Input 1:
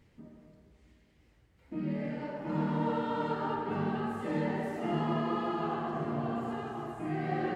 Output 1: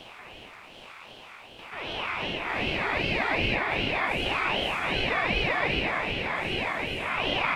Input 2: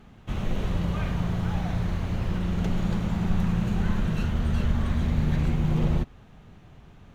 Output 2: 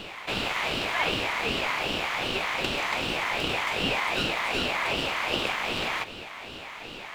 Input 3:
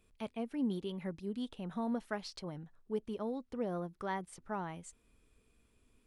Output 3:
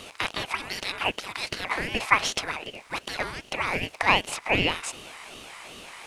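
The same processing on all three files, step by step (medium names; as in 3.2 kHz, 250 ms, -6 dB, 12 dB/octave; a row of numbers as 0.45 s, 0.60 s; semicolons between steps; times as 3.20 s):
spectral levelling over time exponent 0.6; resonant high-pass 1.6 kHz, resonance Q 3.2; ring modulator with a swept carrier 900 Hz, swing 45%, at 2.6 Hz; normalise loudness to -27 LUFS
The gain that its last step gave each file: +10.0 dB, +8.5 dB, +18.0 dB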